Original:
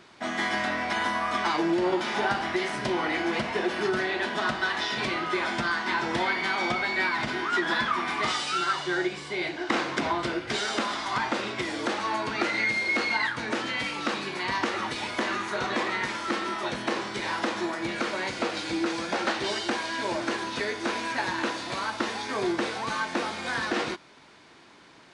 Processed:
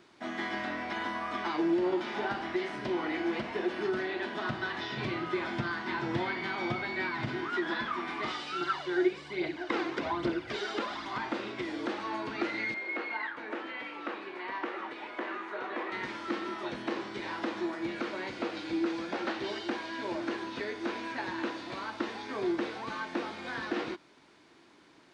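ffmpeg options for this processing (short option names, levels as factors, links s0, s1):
-filter_complex "[0:a]asettb=1/sr,asplit=3[s0][s1][s2];[s0]atrim=end=4.494[s3];[s1]atrim=start=4.49:end=7.5,asetpts=PTS-STARTPTS,afade=t=in:d=0.004:c=qsin,afade=t=out:st=3.006:d=0.004:c=qsin,equalizer=f=120:t=o:w=0.77:g=14[s4];[s2]atrim=start=7.496[s5];[s3][s4]acrossfade=d=0.004:c1=hsin:c2=qsin[s6];[s6][s5]acrossfade=d=0.004:c1=qsin:c2=hsin,asettb=1/sr,asplit=3[s7][s8][s9];[s7]atrim=end=8.614[s10];[s8]atrim=start=8.61:end=11.08,asetpts=PTS-STARTPTS,afade=t=in:d=0.004:c=qsin,afade=t=out:st=2.466:d=0.004:c=qsin,aphaser=in_gain=1:out_gain=1:delay=3:decay=0.5:speed=1.2:type=triangular[s11];[s9]atrim=start=11.076[s12];[s10][s11]acrossfade=d=0.004:c1=hsin:c2=qsin[s13];[s13][s12]acrossfade=d=0.004:c1=qsin:c2=hsin,asettb=1/sr,asplit=3[s14][s15][s16];[s14]atrim=end=12.744[s17];[s15]atrim=start=12.74:end=15.92,asetpts=PTS-STARTPTS,afade=t=in:d=0.004:c=qsin,afade=t=out:st=3.176:d=0.004:c=qsin,acrossover=split=300 3000:gain=0.1 1 0.1[s18][s19][s20];[s18][s19][s20]amix=inputs=3:normalize=0[s21];[s16]atrim=start=15.916[s22];[s17][s21]acrossfade=d=0.004:c1=hsin:c2=qsin[s23];[s23][s22]acrossfade=d=0.004:c1=qsin:c2=hsin,acrossover=split=5000[s24][s25];[s25]acompressor=threshold=0.00112:ratio=4:attack=1:release=60[s26];[s24][s26]amix=inputs=2:normalize=0,equalizer=f=320:w=2:g=6.5,volume=0.398"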